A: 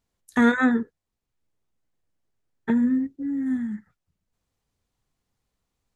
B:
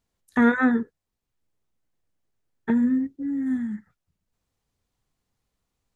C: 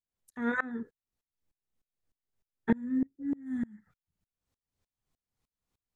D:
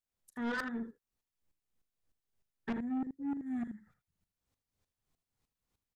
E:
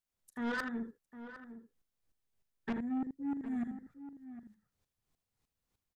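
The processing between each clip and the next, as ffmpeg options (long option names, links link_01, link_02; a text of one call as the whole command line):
ffmpeg -i in.wav -filter_complex "[0:a]acrossover=split=2800[link_01][link_02];[link_02]acompressor=threshold=-53dB:ratio=4:attack=1:release=60[link_03];[link_01][link_03]amix=inputs=2:normalize=0" out.wav
ffmpeg -i in.wav -af "aeval=exprs='val(0)*pow(10,-28*if(lt(mod(-3.3*n/s,1),2*abs(-3.3)/1000),1-mod(-3.3*n/s,1)/(2*abs(-3.3)/1000),(mod(-3.3*n/s,1)-2*abs(-3.3)/1000)/(1-2*abs(-3.3)/1000))/20)':channel_layout=same" out.wav
ffmpeg -i in.wav -af "aecho=1:1:39|79:0.168|0.251,asoftclip=type=tanh:threshold=-31.5dB" out.wav
ffmpeg -i in.wav -filter_complex "[0:a]asplit=2[link_01][link_02];[link_02]adelay=758,volume=-12dB,highshelf=frequency=4000:gain=-17.1[link_03];[link_01][link_03]amix=inputs=2:normalize=0" out.wav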